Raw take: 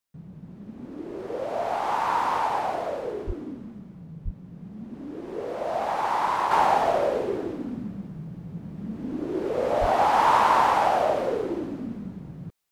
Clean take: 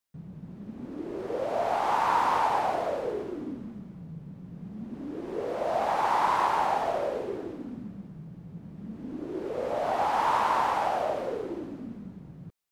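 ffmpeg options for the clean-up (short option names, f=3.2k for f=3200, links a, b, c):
-filter_complex "[0:a]asplit=3[a][b][c];[a]afade=t=out:st=3.26:d=0.02[d];[b]highpass=f=140:w=0.5412,highpass=f=140:w=1.3066,afade=t=in:st=3.26:d=0.02,afade=t=out:st=3.38:d=0.02[e];[c]afade=t=in:st=3.38:d=0.02[f];[d][e][f]amix=inputs=3:normalize=0,asplit=3[g][h][i];[g]afade=t=out:st=4.24:d=0.02[j];[h]highpass=f=140:w=0.5412,highpass=f=140:w=1.3066,afade=t=in:st=4.24:d=0.02,afade=t=out:st=4.36:d=0.02[k];[i]afade=t=in:st=4.36:d=0.02[l];[j][k][l]amix=inputs=3:normalize=0,asplit=3[m][n][o];[m]afade=t=out:st=9.8:d=0.02[p];[n]highpass=f=140:w=0.5412,highpass=f=140:w=1.3066,afade=t=in:st=9.8:d=0.02,afade=t=out:st=9.92:d=0.02[q];[o]afade=t=in:st=9.92:d=0.02[r];[p][q][r]amix=inputs=3:normalize=0,asetnsamples=n=441:p=0,asendcmd='6.51 volume volume -6dB',volume=0dB"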